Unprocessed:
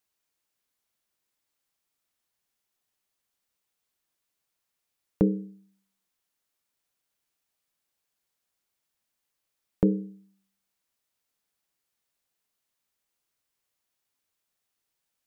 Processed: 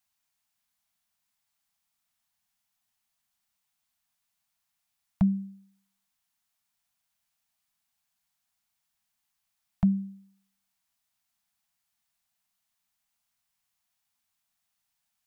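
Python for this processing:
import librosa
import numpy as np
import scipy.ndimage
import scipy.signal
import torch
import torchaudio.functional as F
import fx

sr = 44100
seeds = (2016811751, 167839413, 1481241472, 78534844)

y = scipy.signal.sosfilt(scipy.signal.cheby1(5, 1.0, [250.0, 650.0], 'bandstop', fs=sr, output='sos'), x)
y = y * librosa.db_to_amplitude(1.5)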